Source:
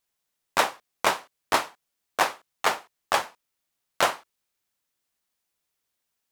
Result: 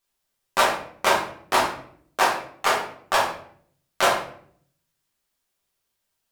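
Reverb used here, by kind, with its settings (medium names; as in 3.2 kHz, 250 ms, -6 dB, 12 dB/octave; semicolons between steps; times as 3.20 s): simulated room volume 83 m³, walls mixed, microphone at 1.2 m; trim -1.5 dB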